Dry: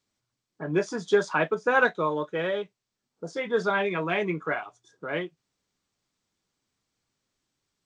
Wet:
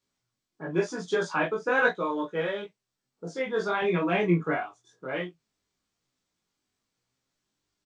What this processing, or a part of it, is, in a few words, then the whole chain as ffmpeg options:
double-tracked vocal: -filter_complex "[0:a]asettb=1/sr,asplit=3[link_01][link_02][link_03];[link_01]atrim=end=3.824[link_04];[link_02]atrim=start=3.82:end=4.66,asetpts=PTS-STARTPTS,afade=type=in:duration=0.004:curve=qsin,afade=type=out:start_time=0.836:duration=0.004:curve=qsin,lowshelf=frequency=410:gain=8.5[link_05];[link_03]atrim=start=4.656[link_06];[link_04][link_05]acrossfade=duration=0.004:curve1=hsin:curve2=qsin[link_07];[link_07][link_06]acrossfade=duration=0.004:curve1=qsin:curve2=hsin,asplit=2[link_08][link_09];[link_09]adelay=23,volume=-3dB[link_10];[link_08][link_10]amix=inputs=2:normalize=0,flanger=delay=15.5:depth=4.7:speed=0.97"

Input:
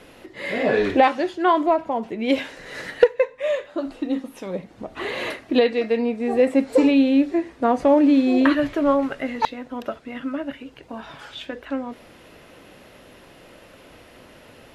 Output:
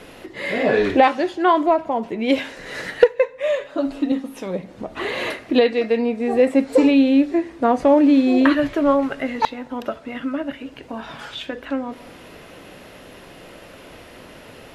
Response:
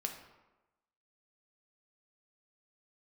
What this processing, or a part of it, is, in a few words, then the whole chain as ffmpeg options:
ducked reverb: -filter_complex "[0:a]asplit=3[link_01][link_02][link_03];[1:a]atrim=start_sample=2205[link_04];[link_02][link_04]afir=irnorm=-1:irlink=0[link_05];[link_03]apad=whole_len=650270[link_06];[link_05][link_06]sidechaincompress=threshold=-36dB:ratio=8:attack=16:release=288,volume=-4dB[link_07];[link_01][link_07]amix=inputs=2:normalize=0,asettb=1/sr,asplit=3[link_08][link_09][link_10];[link_08]atrim=end=3.604[link_11];[link_09]atrim=start=3.6:end=4.12,asetpts=PTS-STARTPTS,afade=type=in:duration=0.004:curve=qsin,afade=type=out:start_time=0.516:duration=0.004:curve=qsin,aecho=1:1:7.2:0.7,atrim=end_sample=22932[link_12];[link_10]atrim=start=4.116[link_13];[link_11][link_12]acrossfade=duration=0.004:curve1=hsin:curve2=qsin[link_14];[link_14][link_13]acrossfade=duration=0.004:curve1=qsin:curve2=hsin,volume=1.5dB"

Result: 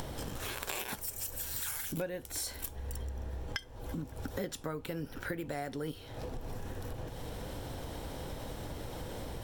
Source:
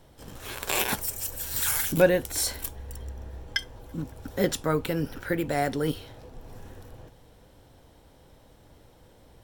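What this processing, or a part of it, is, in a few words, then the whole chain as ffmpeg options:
upward and downward compression: -af "acompressor=mode=upward:threshold=-34dB:ratio=2.5,acompressor=threshold=-41dB:ratio=6,volume=5dB"

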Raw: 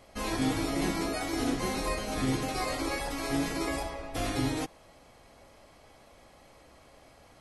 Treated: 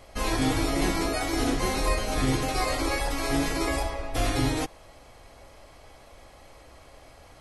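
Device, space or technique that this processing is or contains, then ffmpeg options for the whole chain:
low shelf boost with a cut just above: -af "lowshelf=frequency=75:gain=7.5,equalizer=frequency=200:width_type=o:width=1:gain=-5.5,volume=5dB"

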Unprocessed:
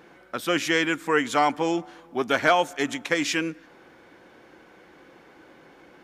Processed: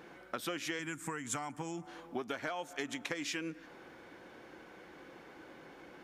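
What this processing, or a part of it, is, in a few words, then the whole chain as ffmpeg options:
serial compression, leveller first: -filter_complex "[0:a]acompressor=threshold=-24dB:ratio=2,acompressor=threshold=-33dB:ratio=8,asettb=1/sr,asplit=3[link_01][link_02][link_03];[link_01]atrim=end=0.794[link_04];[link_02]atrim=start=0.79:end=1.87,asetpts=PTS-STARTPTS,afade=type=in:duration=0.004:curve=qsin,afade=type=out:start_time=1.076:duration=0.004:curve=qsin,equalizer=frequency=125:width_type=o:width=1:gain=10,equalizer=frequency=500:width_type=o:width=1:gain=-7,equalizer=frequency=4000:width_type=o:width=1:gain=-9,equalizer=frequency=8000:width_type=o:width=1:gain=12[link_05];[link_03]atrim=start=1.866[link_06];[link_04][link_05]acrossfade=duration=0.004:curve1=hsin:curve2=qsin[link_07];[link_07][link_06]acrossfade=duration=0.004:curve1=qsin:curve2=hsin,volume=-2dB"

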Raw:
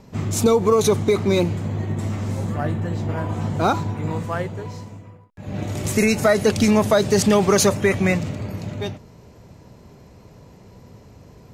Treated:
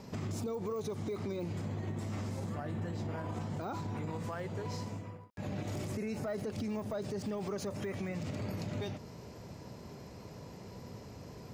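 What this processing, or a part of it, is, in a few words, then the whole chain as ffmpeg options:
broadcast voice chain: -af "highpass=frequency=100:poles=1,deesser=0.9,acompressor=threshold=-31dB:ratio=5,equalizer=frequency=5000:width_type=o:width=0.28:gain=5,alimiter=level_in=5dB:limit=-24dB:level=0:latency=1:release=65,volume=-5dB,volume=-1dB"

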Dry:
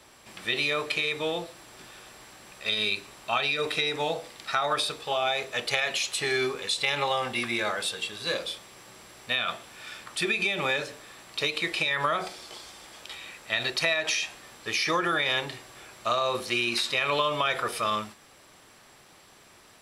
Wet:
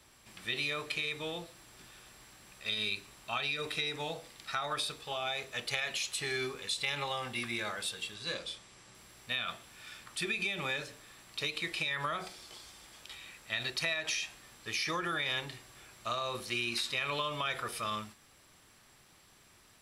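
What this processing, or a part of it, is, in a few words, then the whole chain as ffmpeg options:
smiley-face EQ: -filter_complex "[0:a]lowshelf=frequency=130:gain=7,equalizer=frequency=570:width_type=o:width=1.8:gain=-4.5,highshelf=frequency=9700:gain=4.5,asettb=1/sr,asplit=3[link_01][link_02][link_03];[link_01]atrim=end=8.144[link_04];[link_02]atrim=start=8.14:end=8.95,asetpts=PTS-STARTPTS,afade=type=in:duration=0.004:curve=qsin,afade=type=out:start_time=0.806:duration=0.004:curve=qsin,lowpass=frequency=9600:width=0.5412,lowpass=frequency=9600:width=1.3066[link_05];[link_03]atrim=start=8.946[link_06];[link_04][link_05]acrossfade=duration=0.004:curve1=hsin:curve2=qsin[link_07];[link_07][link_06]acrossfade=duration=0.004:curve1=qsin:curve2=hsin,volume=-7dB"

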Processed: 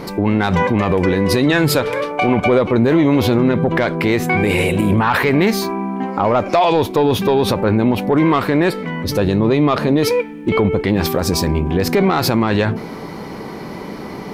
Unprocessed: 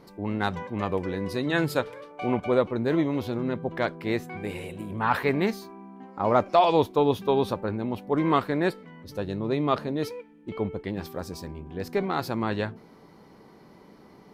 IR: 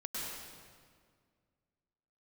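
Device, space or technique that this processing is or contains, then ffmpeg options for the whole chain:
mastering chain: -af "equalizer=frequency=2300:width_type=o:width=0.41:gain=3.5,acompressor=threshold=-28dB:ratio=2,asoftclip=type=tanh:threshold=-18.5dB,alimiter=level_in=28dB:limit=-1dB:release=50:level=0:latency=1,volume=-5.5dB"

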